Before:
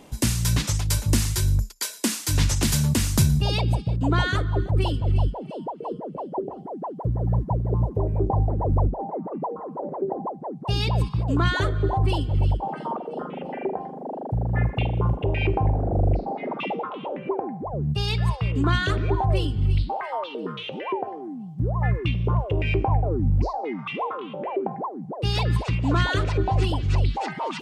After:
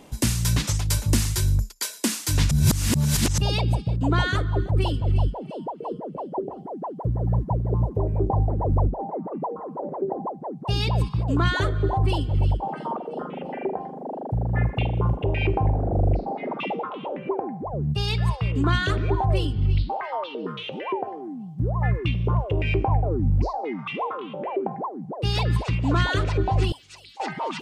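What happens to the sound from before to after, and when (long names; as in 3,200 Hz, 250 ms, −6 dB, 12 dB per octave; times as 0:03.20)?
0:02.51–0:03.38: reverse
0:19.53–0:20.46: low-pass filter 6,300 Hz 24 dB per octave
0:26.72–0:27.20: first difference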